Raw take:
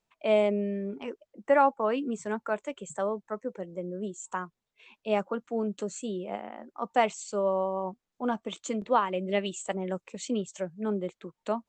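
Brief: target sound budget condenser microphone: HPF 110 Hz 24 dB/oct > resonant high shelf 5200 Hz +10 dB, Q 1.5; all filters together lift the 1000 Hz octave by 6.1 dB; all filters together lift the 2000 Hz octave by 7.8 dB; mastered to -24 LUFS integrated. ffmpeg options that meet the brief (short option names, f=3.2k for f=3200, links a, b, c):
-af "highpass=f=110:w=0.5412,highpass=f=110:w=1.3066,equalizer=f=1k:t=o:g=6,equalizer=f=2k:t=o:g=9,highshelf=f=5.2k:t=q:w=1.5:g=10,volume=2.5dB"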